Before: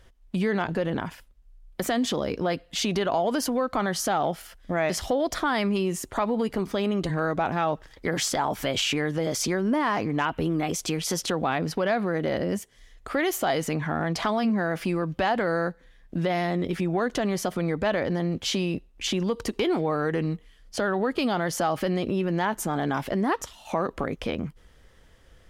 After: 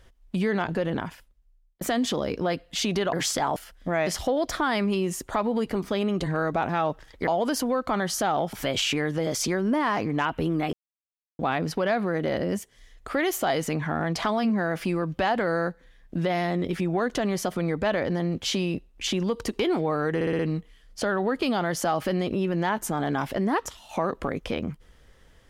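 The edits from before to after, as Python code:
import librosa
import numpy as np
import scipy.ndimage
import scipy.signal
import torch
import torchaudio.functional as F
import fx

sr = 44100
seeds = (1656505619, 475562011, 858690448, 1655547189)

y = fx.edit(x, sr, fx.fade_out_span(start_s=0.98, length_s=0.83),
    fx.swap(start_s=3.13, length_s=1.26, other_s=8.1, other_length_s=0.43),
    fx.silence(start_s=10.73, length_s=0.66),
    fx.stutter(start_s=20.15, slice_s=0.06, count=5), tone=tone)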